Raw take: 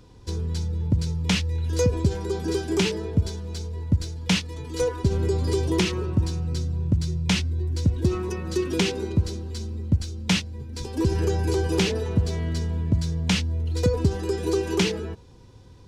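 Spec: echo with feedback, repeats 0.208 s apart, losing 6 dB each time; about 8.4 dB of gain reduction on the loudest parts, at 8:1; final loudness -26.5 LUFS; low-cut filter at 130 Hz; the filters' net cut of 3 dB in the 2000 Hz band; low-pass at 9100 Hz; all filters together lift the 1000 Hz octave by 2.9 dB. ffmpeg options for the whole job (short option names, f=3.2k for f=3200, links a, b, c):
-af "highpass=130,lowpass=9.1k,equalizer=f=1k:t=o:g=4.5,equalizer=f=2k:t=o:g=-5,acompressor=threshold=-27dB:ratio=8,aecho=1:1:208|416|624|832|1040|1248:0.501|0.251|0.125|0.0626|0.0313|0.0157,volume=5dB"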